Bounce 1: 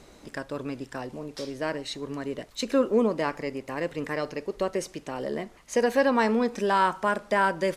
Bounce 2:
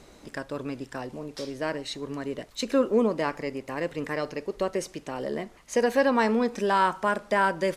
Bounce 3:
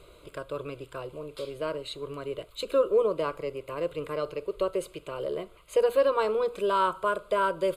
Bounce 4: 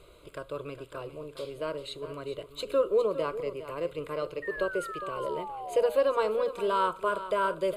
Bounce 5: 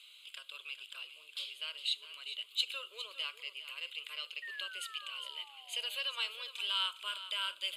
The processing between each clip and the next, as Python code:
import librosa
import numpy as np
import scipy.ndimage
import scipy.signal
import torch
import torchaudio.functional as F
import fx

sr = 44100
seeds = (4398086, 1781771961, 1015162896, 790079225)

y1 = x
y2 = fx.dynamic_eq(y1, sr, hz=2300.0, q=2.0, threshold_db=-45.0, ratio=4.0, max_db=-6)
y2 = fx.fixed_phaser(y2, sr, hz=1200.0, stages=8)
y2 = y2 * 10.0 ** (1.5 / 20.0)
y3 = fx.spec_paint(y2, sr, seeds[0], shape='fall', start_s=4.42, length_s=1.62, low_hz=560.0, high_hz=1900.0, level_db=-37.0)
y3 = y3 + 10.0 ** (-12.5 / 20.0) * np.pad(y3, (int(408 * sr / 1000.0), 0))[:len(y3)]
y3 = y3 * 10.0 ** (-2.0 / 20.0)
y4 = fx.highpass_res(y3, sr, hz=3000.0, q=4.6)